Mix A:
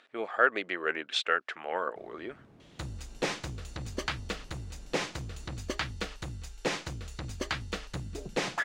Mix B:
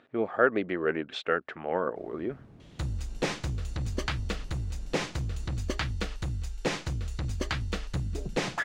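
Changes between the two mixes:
speech: add spectral tilt −4 dB per octave
master: add low-shelf EQ 180 Hz +10 dB

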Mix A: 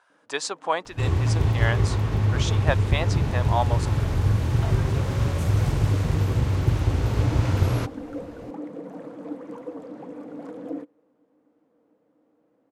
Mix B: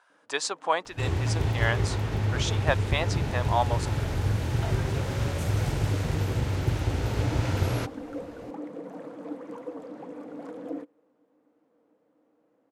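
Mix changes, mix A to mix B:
second sound: add parametric band 1,100 Hz −7 dB 0.21 octaves
master: add low-shelf EQ 280 Hz −6 dB

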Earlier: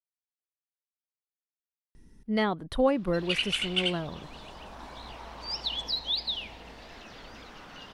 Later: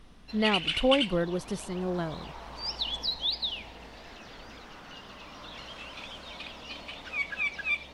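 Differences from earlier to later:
speech: entry −1.95 s
background: entry −2.85 s

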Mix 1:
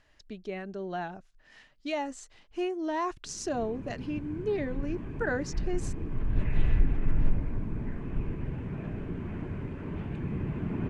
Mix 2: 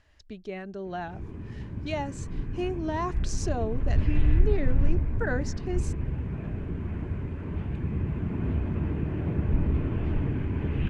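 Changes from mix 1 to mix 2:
background: entry −2.40 s
master: add parametric band 69 Hz +10.5 dB 0.99 octaves

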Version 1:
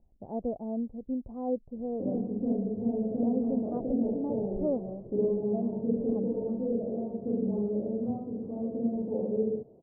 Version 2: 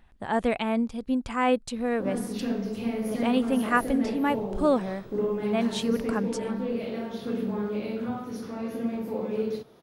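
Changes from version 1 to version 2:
speech +6.5 dB
master: remove Butterworth low-pass 690 Hz 36 dB per octave

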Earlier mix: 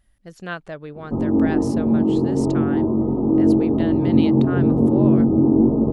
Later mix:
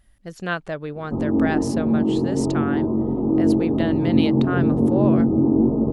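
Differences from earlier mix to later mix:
speech +4.5 dB
background: send −7.5 dB

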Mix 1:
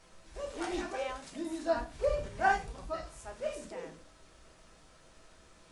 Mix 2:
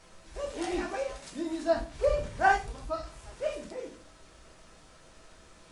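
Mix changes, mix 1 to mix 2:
speech −8.0 dB
background +4.0 dB

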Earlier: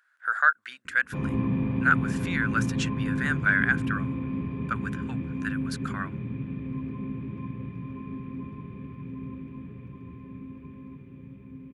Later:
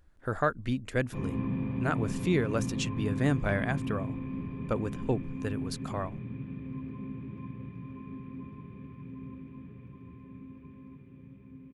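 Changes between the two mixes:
speech: remove high-pass with resonance 1,500 Hz, resonance Q 6.3
background −5.5 dB

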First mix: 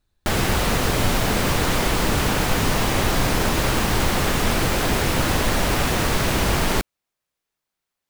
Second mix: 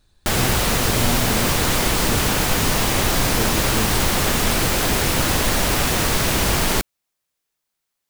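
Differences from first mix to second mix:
speech +11.0 dB
master: add high-shelf EQ 3,800 Hz +7 dB

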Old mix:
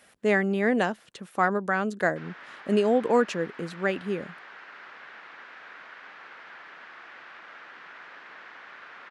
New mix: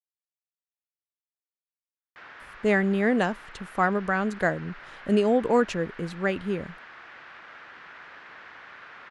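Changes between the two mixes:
speech: entry +2.40 s
master: remove high-pass filter 190 Hz 12 dB per octave

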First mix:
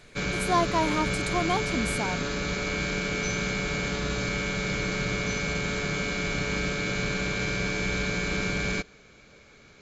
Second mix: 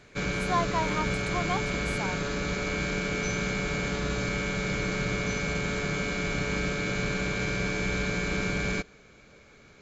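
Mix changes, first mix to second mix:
speech: add resonant band-pass 1,800 Hz, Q 0.61
master: add parametric band 4,300 Hz −3.5 dB 1.7 octaves

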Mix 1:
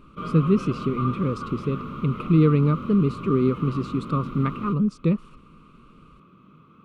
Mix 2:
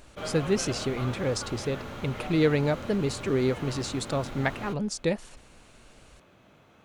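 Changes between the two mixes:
background: add high-shelf EQ 4,300 Hz −5.5 dB
master: remove drawn EQ curve 110 Hz 0 dB, 160 Hz +12 dB, 450 Hz +1 dB, 770 Hz −20 dB, 1,200 Hz +14 dB, 1,700 Hz −16 dB, 2,500 Hz −2 dB, 6,700 Hz −21 dB, 9,600 Hz −17 dB

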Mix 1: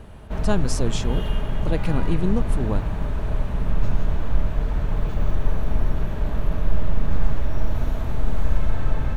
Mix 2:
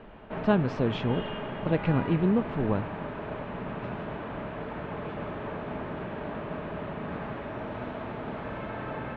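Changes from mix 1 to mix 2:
background: add high-pass filter 230 Hz 12 dB per octave
master: add low-pass filter 3,000 Hz 24 dB per octave

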